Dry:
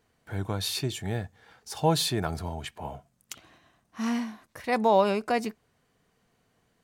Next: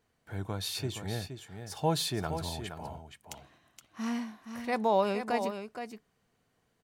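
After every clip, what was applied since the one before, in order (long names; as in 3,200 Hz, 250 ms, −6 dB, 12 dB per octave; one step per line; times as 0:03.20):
single-tap delay 470 ms −8.5 dB
level −5 dB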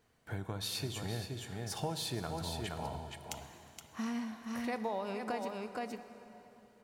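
downward compressor 6 to 1, threshold −38 dBFS, peak gain reduction 16 dB
dense smooth reverb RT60 3.4 s, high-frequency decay 0.8×, DRR 9.5 dB
level +3 dB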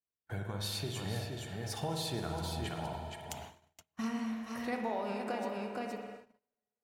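spectral magnitudes quantised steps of 15 dB
spring reverb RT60 1.6 s, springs 49 ms, chirp 75 ms, DRR 3 dB
noise gate −48 dBFS, range −34 dB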